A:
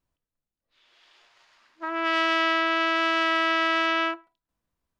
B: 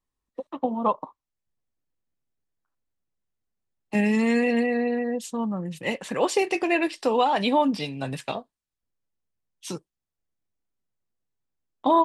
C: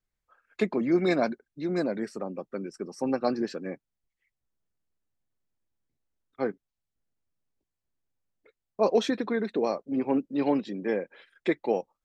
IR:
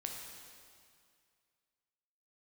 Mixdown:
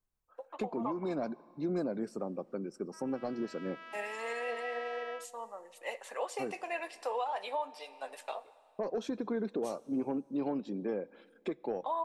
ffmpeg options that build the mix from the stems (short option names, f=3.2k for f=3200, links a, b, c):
-filter_complex "[0:a]highpass=1k,adelay=1100,volume=-16.5dB[a];[1:a]highpass=f=540:w=0.5412,highpass=f=540:w=1.3066,flanger=delay=1.8:depth=3.7:regen=79:speed=1.4:shape=triangular,volume=-3.5dB,asplit=2[b][c];[c]volume=-11dB[d];[2:a]equalizer=f=1.9k:w=5.6:g=-13,asoftclip=type=tanh:threshold=-15.5dB,acompressor=threshold=-26dB:ratio=6,volume=-2dB,asplit=3[e][f][g];[f]volume=-19dB[h];[g]apad=whole_len=268576[i];[a][i]sidechaincompress=threshold=-34dB:ratio=8:attack=16:release=1430[j];[3:a]atrim=start_sample=2205[k];[d][h]amix=inputs=2:normalize=0[l];[l][k]afir=irnorm=-1:irlink=0[m];[j][b][e][m]amix=inputs=4:normalize=0,equalizer=f=3.6k:w=0.66:g=-7.5,alimiter=level_in=1.5dB:limit=-24dB:level=0:latency=1:release=453,volume=-1.5dB"